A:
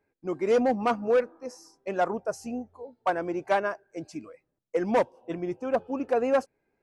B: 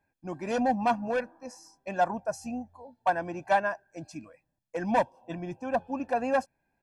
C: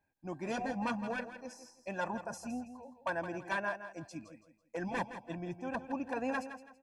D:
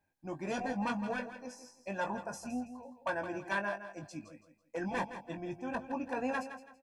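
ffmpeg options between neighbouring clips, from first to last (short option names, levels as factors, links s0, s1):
-af "aecho=1:1:1.2:0.74,volume=0.794"
-af "afftfilt=real='re*lt(hypot(re,im),0.398)':imag='im*lt(hypot(re,im),0.398)':win_size=1024:overlap=0.75,aecho=1:1:165|330|495:0.282|0.0846|0.0254,volume=0.596"
-filter_complex "[0:a]asplit=2[s0][s1];[s1]adelay=20,volume=0.447[s2];[s0][s2]amix=inputs=2:normalize=0"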